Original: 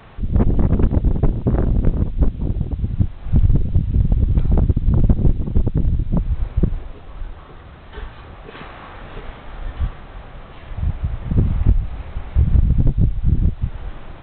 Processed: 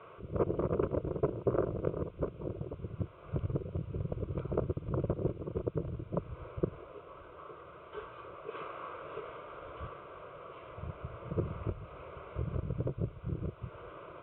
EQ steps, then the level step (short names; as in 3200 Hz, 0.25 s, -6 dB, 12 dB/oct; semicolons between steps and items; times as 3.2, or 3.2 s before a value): BPF 250–2100 Hz; air absorption 230 m; fixed phaser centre 1200 Hz, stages 8; -1.0 dB